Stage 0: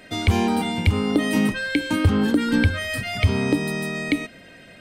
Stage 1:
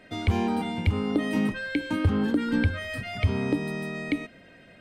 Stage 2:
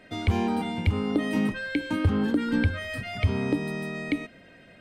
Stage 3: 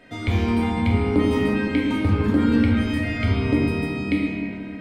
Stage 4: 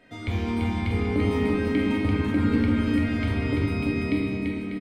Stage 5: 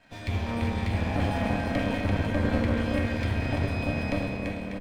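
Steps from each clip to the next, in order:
high-shelf EQ 4,100 Hz −10.5 dB; level −5 dB
no processing that can be heard
convolution reverb RT60 2.6 s, pre-delay 4 ms, DRR −3.5 dB
bouncing-ball delay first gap 340 ms, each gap 0.75×, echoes 5; level −6 dB
lower of the sound and its delayed copy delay 1.2 ms; level −1 dB

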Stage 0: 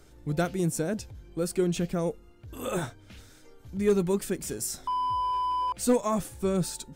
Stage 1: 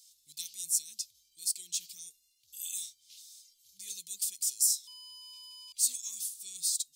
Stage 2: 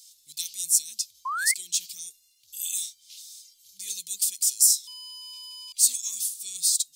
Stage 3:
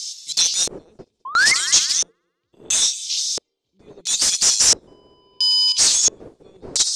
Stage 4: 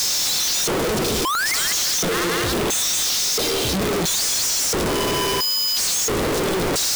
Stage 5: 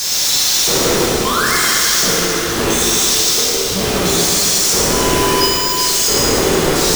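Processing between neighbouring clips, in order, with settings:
inverse Chebyshev high-pass filter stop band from 1,600 Hz, stop band 50 dB; level +7 dB
low-shelf EQ 400 Hz −5 dB; sound drawn into the spectrogram rise, 0:01.25–0:01.54, 1,000–2,200 Hz −37 dBFS; level +8 dB
echo machine with several playback heads 68 ms, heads first and third, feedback 51%, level −22 dB; mid-hump overdrive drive 29 dB, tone 7,000 Hz, clips at −4.5 dBFS; auto-filter low-pass square 0.74 Hz 430–5,900 Hz; level −3 dB
sign of each sample alone
in parallel at +2.5 dB: output level in coarse steps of 21 dB; on the sum: dense smooth reverb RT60 3 s, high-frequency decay 0.9×, DRR −7 dB; level −8 dB

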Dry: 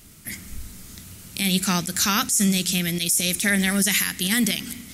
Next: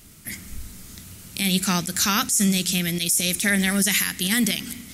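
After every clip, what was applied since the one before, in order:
no processing that can be heard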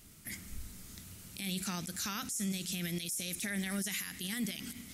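brickwall limiter −19 dBFS, peak gain reduction 10.5 dB
level −8.5 dB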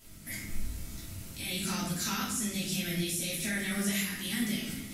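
rectangular room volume 200 cubic metres, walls mixed, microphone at 2.9 metres
level −4 dB

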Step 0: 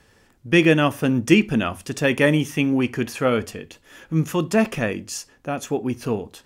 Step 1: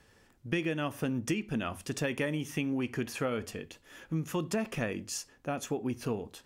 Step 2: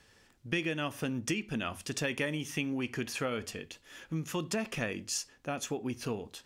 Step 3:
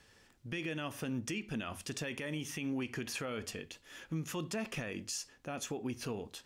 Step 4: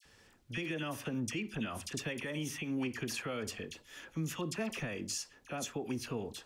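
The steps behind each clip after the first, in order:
downward compressor 12 to 1, threshold −22 dBFS, peak gain reduction 14 dB; level −6 dB
parametric band 4,400 Hz +6.5 dB 2.6 octaves; level −2.5 dB
brickwall limiter −28 dBFS, peak gain reduction 10 dB; level −1 dB
all-pass dispersion lows, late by 51 ms, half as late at 1,600 Hz; level +1 dB

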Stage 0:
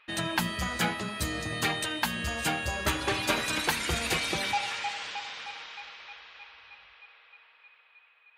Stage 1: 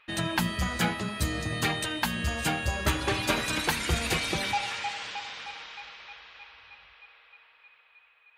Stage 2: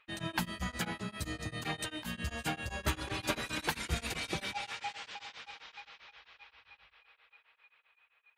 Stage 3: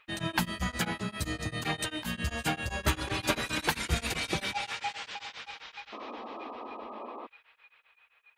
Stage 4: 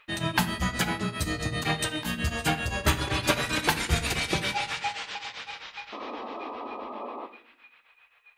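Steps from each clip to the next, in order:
low-shelf EQ 200 Hz +6.5 dB
tremolo along a rectified sine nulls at 7.6 Hz; level −5.5 dB
sound drawn into the spectrogram noise, 0:05.92–0:07.27, 210–1,300 Hz −47 dBFS; level +5 dB
rectangular room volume 120 cubic metres, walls mixed, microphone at 0.32 metres; level +4 dB

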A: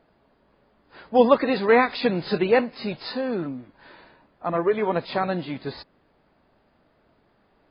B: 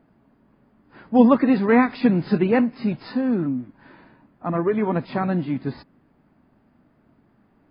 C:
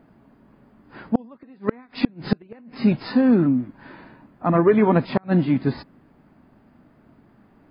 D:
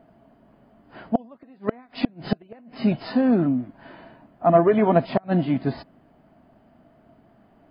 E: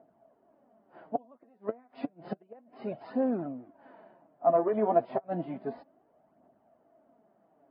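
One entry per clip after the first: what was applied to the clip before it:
graphic EQ with 10 bands 125 Hz +6 dB, 250 Hz +9 dB, 500 Hz −5 dB, 4,000 Hz −10 dB
gate with flip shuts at −11 dBFS, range −35 dB; level +5.5 dB
hollow resonant body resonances 670/3,000 Hz, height 13 dB, ringing for 35 ms; level −3 dB
flanger 0.31 Hz, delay 0 ms, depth 9.6 ms, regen +33%; resonant band-pass 610 Hz, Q 1.1; level −2 dB

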